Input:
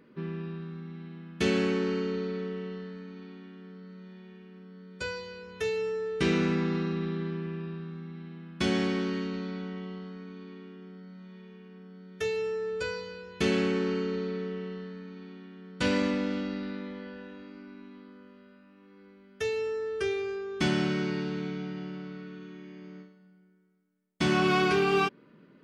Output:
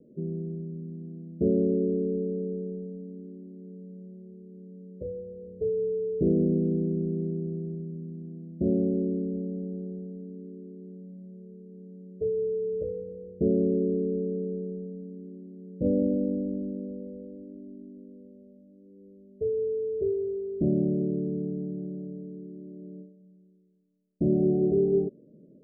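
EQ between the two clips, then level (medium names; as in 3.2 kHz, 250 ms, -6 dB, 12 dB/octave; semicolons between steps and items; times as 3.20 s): steep low-pass 640 Hz 96 dB/octave; +3.0 dB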